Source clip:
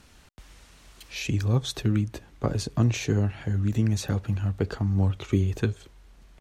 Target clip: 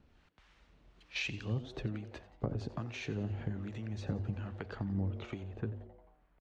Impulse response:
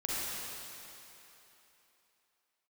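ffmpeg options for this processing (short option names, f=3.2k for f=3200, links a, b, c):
-filter_complex "[0:a]asetnsamples=n=441:p=0,asendcmd='5.43 lowpass f 1400',lowpass=3.3k,agate=range=-10dB:threshold=-40dB:ratio=16:detection=peak,bandreject=f=50:t=h:w=6,bandreject=f=100:t=h:w=6,acompressor=threshold=-35dB:ratio=4,acrossover=split=720[a][b];[a]aeval=exprs='val(0)*(1-0.7/2+0.7/2*cos(2*PI*1.2*n/s))':c=same[c];[b]aeval=exprs='val(0)*(1-0.7/2-0.7/2*cos(2*PI*1.2*n/s))':c=same[d];[c][d]amix=inputs=2:normalize=0,asplit=6[e][f][g][h][i][j];[f]adelay=88,afreqshift=130,volume=-17dB[k];[g]adelay=176,afreqshift=260,volume=-21.7dB[l];[h]adelay=264,afreqshift=390,volume=-26.5dB[m];[i]adelay=352,afreqshift=520,volume=-31.2dB[n];[j]adelay=440,afreqshift=650,volume=-35.9dB[o];[e][k][l][m][n][o]amix=inputs=6:normalize=0,volume=2.5dB"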